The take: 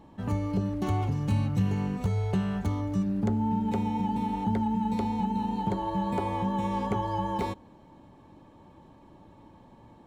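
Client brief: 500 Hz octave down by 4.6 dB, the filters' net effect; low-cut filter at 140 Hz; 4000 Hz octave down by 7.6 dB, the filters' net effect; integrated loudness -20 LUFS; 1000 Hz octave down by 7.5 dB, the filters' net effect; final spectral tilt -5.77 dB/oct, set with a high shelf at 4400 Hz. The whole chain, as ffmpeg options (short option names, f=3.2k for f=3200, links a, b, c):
-af "highpass=140,equalizer=f=500:t=o:g=-4,equalizer=f=1k:t=o:g=-7,equalizer=f=4k:t=o:g=-7,highshelf=f=4.4k:g=-6,volume=12.5dB"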